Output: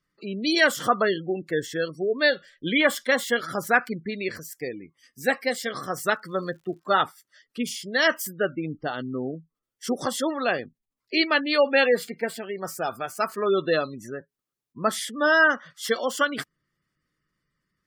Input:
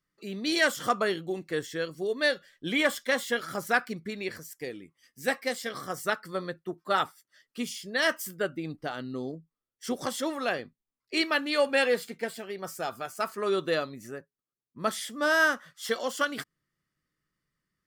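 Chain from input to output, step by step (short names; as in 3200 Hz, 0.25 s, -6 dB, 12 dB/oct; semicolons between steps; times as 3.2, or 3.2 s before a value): spectral gate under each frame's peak -25 dB strong; 5.94–7.04 crackle 100/s -55 dBFS; gain +5 dB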